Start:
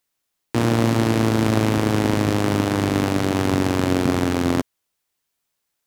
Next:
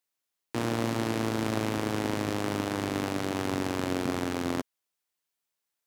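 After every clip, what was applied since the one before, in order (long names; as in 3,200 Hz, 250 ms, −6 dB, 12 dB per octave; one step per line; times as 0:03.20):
low-shelf EQ 200 Hz −7.5 dB
level −8 dB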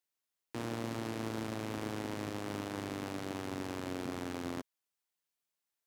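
brickwall limiter −21.5 dBFS, peak gain reduction 8.5 dB
level −4.5 dB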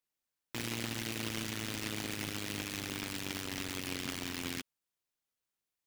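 short delay modulated by noise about 2,400 Hz, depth 0.43 ms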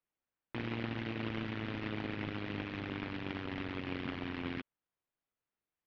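Gaussian smoothing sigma 3.1 samples
level +2 dB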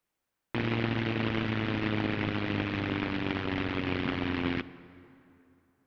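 dense smooth reverb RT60 3 s, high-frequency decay 0.6×, DRR 15.5 dB
level +8.5 dB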